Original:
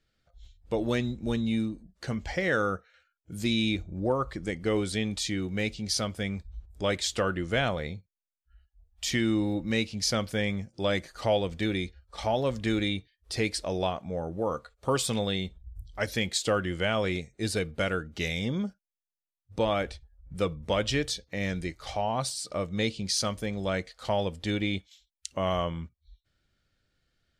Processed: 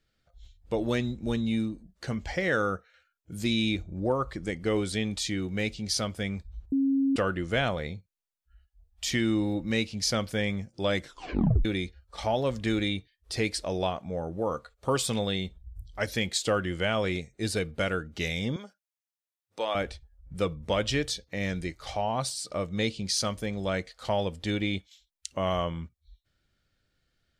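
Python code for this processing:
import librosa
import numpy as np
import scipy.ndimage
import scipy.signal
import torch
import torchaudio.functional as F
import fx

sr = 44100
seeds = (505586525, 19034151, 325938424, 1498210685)

y = fx.bessel_highpass(x, sr, hz=650.0, order=2, at=(18.56, 19.75))
y = fx.edit(y, sr, fx.bleep(start_s=6.72, length_s=0.44, hz=272.0, db=-21.5),
    fx.tape_stop(start_s=11.0, length_s=0.65), tone=tone)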